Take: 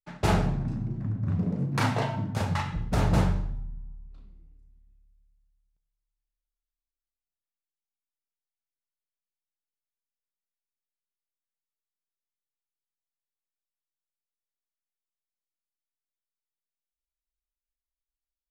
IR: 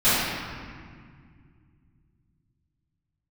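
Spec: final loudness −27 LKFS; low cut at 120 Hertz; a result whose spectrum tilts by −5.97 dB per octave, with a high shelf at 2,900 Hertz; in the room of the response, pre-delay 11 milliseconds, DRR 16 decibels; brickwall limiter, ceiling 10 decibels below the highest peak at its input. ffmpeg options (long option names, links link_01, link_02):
-filter_complex "[0:a]highpass=120,highshelf=frequency=2900:gain=4,alimiter=limit=-22.5dB:level=0:latency=1,asplit=2[link_01][link_02];[1:a]atrim=start_sample=2205,adelay=11[link_03];[link_02][link_03]afir=irnorm=-1:irlink=0,volume=-36dB[link_04];[link_01][link_04]amix=inputs=2:normalize=0,volume=5.5dB"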